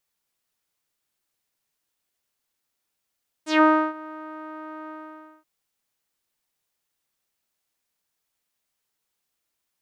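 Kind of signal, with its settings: synth note saw D#4 12 dB/octave, low-pass 1.3 kHz, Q 3.2, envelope 3 oct, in 0.14 s, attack 150 ms, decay 0.32 s, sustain -23 dB, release 0.55 s, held 1.43 s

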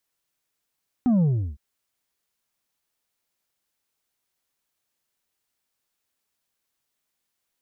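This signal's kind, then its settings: sub drop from 260 Hz, over 0.51 s, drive 4.5 dB, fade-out 0.35 s, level -17 dB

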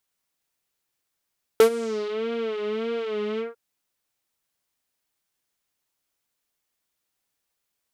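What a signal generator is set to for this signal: synth patch with vibrato A4, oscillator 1 triangle, interval -12 st, detune 16 cents, filter lowpass, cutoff 1.2 kHz, Q 2.2, filter envelope 3.5 oct, filter decay 0.55 s, attack 1.3 ms, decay 0.09 s, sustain -19 dB, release 0.16 s, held 1.79 s, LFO 1.7 Hz, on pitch 92 cents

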